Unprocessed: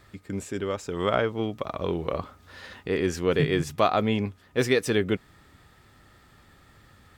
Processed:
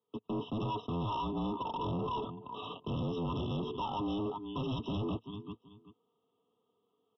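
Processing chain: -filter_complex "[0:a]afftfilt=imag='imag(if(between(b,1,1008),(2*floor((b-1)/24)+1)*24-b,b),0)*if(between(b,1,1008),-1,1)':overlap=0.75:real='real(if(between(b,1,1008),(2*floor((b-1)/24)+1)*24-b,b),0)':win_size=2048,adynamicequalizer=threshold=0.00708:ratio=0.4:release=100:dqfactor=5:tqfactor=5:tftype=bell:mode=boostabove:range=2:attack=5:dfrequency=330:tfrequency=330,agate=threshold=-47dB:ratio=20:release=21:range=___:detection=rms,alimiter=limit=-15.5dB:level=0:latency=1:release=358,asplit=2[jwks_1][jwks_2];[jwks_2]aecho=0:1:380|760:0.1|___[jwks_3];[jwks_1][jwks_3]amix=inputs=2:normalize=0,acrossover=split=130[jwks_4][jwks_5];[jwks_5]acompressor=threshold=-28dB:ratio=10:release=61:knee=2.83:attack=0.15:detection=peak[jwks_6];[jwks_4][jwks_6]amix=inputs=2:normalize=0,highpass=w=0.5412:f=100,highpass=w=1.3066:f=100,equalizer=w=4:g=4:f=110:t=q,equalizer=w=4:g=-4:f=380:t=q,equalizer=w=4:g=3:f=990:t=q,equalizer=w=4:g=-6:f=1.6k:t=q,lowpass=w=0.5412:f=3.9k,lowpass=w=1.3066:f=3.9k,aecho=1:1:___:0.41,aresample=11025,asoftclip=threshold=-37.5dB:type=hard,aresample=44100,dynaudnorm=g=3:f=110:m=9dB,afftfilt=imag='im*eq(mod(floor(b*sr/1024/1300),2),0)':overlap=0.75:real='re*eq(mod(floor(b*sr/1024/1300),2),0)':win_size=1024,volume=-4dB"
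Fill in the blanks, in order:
-27dB, 0.022, 4.3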